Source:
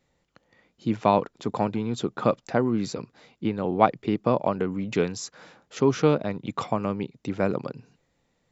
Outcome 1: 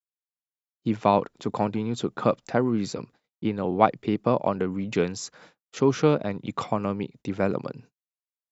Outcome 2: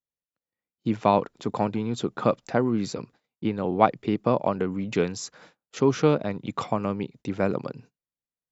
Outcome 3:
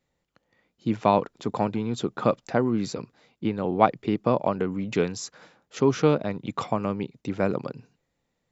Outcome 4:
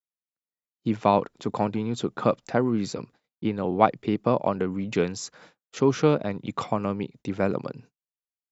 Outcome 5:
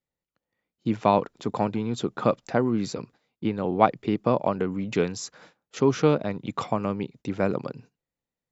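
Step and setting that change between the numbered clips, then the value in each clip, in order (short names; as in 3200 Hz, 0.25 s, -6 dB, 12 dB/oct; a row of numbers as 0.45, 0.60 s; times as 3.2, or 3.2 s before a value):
gate, range: -57, -32, -6, -45, -20 dB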